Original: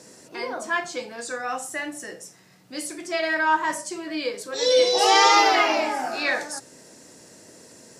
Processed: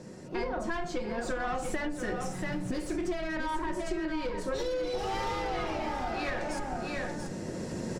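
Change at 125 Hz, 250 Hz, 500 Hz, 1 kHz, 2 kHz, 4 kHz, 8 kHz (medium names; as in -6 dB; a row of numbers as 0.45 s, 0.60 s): no reading, -0.5 dB, -8.5 dB, -12.5 dB, -12.0 dB, -17.5 dB, -14.5 dB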